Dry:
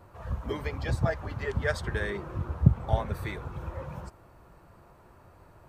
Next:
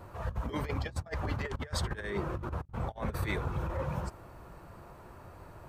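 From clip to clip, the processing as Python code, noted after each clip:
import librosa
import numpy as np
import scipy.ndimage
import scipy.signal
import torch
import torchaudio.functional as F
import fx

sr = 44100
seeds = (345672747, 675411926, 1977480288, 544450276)

y = fx.over_compress(x, sr, threshold_db=-35.0, ratio=-0.5)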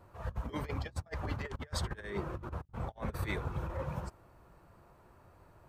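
y = fx.upward_expand(x, sr, threshold_db=-46.0, expansion=1.5)
y = y * 10.0 ** (-1.5 / 20.0)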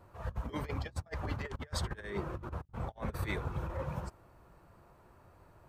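y = x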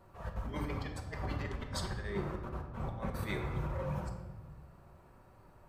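y = fx.room_shoebox(x, sr, seeds[0], volume_m3=770.0, walls='mixed', distance_m=1.1)
y = y * 10.0 ** (-2.0 / 20.0)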